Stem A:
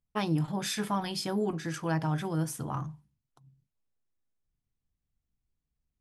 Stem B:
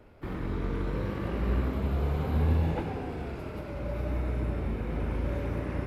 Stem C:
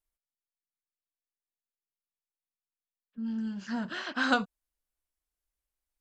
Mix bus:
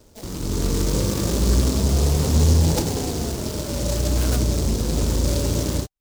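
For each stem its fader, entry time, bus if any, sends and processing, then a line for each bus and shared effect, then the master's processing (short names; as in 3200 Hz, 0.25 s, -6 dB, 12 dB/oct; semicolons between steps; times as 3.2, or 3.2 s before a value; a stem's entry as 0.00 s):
-17.5 dB, 0.00 s, no send, bell 680 Hz +12 dB 1.6 oct; sample-rate reducer 1300 Hz
+2.5 dB, 0.00 s, no send, AGC gain up to 8 dB
-4.5 dB, 0.00 s, no send, dry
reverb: off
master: notch 770 Hz, Q 16; soft clip -7 dBFS, distortion -24 dB; noise-modulated delay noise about 5600 Hz, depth 0.16 ms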